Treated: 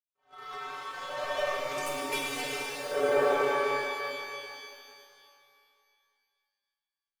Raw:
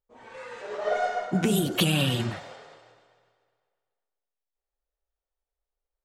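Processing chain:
adaptive Wiener filter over 41 samples
camcorder AGC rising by 68 dB per second
downward expander −47 dBFS
in parallel at +2 dB: brickwall limiter −21.5 dBFS, peak gain reduction 11 dB
on the sum: leveller curve on the samples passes 3
high-pass filter sweep 1,200 Hz → 570 Hz, 0:00.76–0:01.55
power curve on the samples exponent 2
stiff-string resonator 160 Hz, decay 0.36 s, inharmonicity 0.008
speed change −16%
on a send: flutter between parallel walls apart 6 metres, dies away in 0.2 s
on the sum: reverb with rising layers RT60 2.5 s, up +12 semitones, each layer −8 dB, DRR −1 dB

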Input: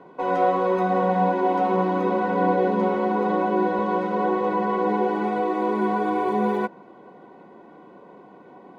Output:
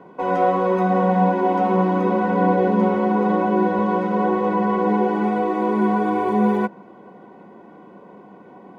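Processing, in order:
thirty-one-band graphic EQ 100 Hz +7 dB, 200 Hz +6 dB, 4,000 Hz −5 dB
level +2 dB

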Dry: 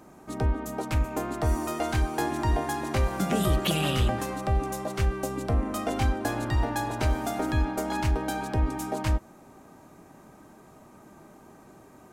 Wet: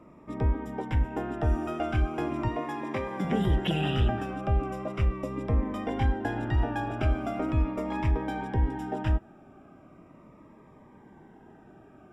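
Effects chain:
0:02.48–0:03.25: high-pass filter 190 Hz 12 dB per octave
tape wow and flutter 21 cents
Savitzky-Golay smoothing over 25 samples
phaser whose notches keep moving one way falling 0.39 Hz

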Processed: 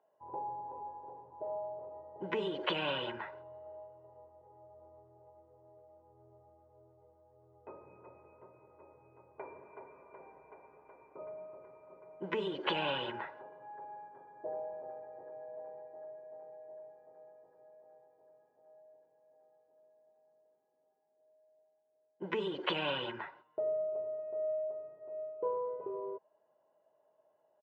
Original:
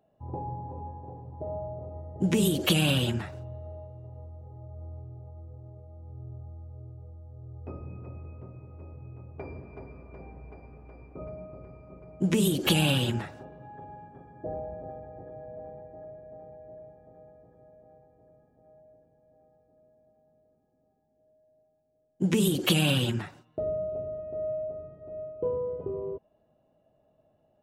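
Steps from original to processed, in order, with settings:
loudspeaker in its box 500–2,600 Hz, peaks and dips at 510 Hz −5 dB, 940 Hz +5 dB, 2,500 Hz −5 dB
comb filter 2 ms, depth 46%
level −1.5 dB

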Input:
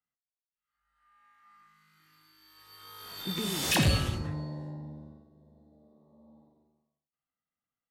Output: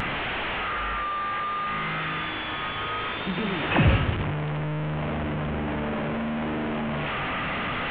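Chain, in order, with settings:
linear delta modulator 16 kbit/s, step −27.5 dBFS
pitch vibrato 0.66 Hz 20 cents
level +5.5 dB

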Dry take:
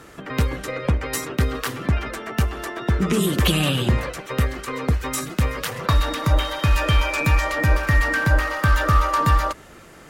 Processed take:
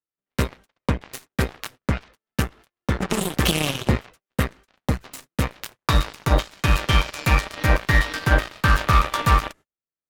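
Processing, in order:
harmonic generator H 6 −29 dB, 7 −16 dB, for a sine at −5 dBFS
noise gate −42 dBFS, range −39 dB

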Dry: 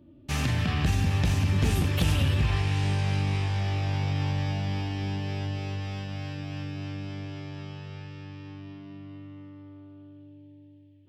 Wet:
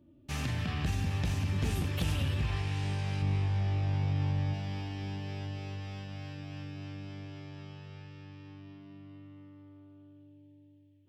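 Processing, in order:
0:03.22–0:04.54: spectral tilt −1.5 dB per octave
level −7 dB

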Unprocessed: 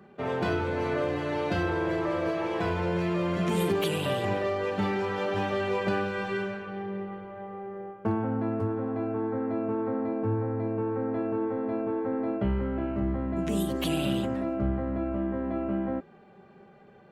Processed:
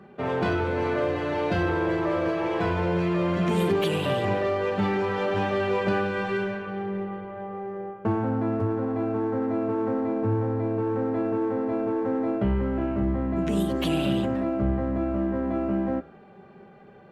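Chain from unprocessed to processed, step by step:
high-shelf EQ 5,500 Hz −9 dB
hum removal 72.81 Hz, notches 30
in parallel at −10.5 dB: gain into a clipping stage and back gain 32.5 dB
on the sum: level +2.5 dB

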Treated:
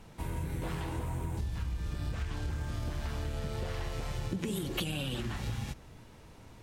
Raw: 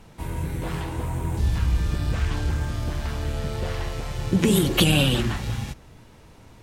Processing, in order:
downward compressor 12 to 1, threshold −27 dBFS, peak gain reduction 14 dB
level −4 dB

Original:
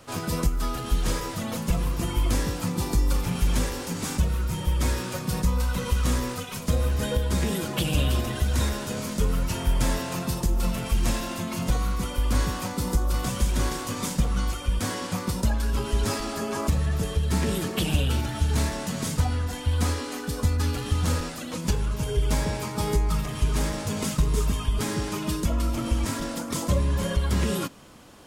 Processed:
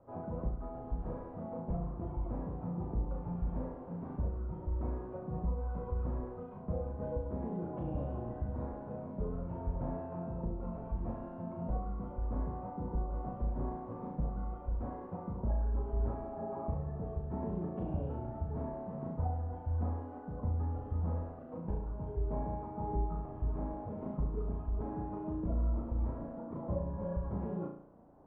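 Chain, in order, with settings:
transistor ladder low-pass 950 Hz, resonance 35%
on a send: flutter between parallel walls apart 6 metres, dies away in 0.55 s
on the sum: level −5.5 dB

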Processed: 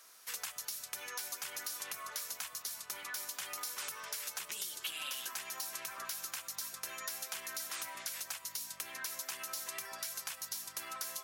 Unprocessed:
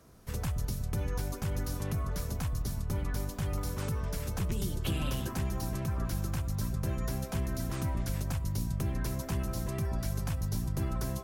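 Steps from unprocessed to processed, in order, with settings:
Bessel high-pass filter 2,100 Hz, order 2
downward compressor 5 to 1, threshold −47 dBFS, peak gain reduction 9.5 dB
level +9.5 dB

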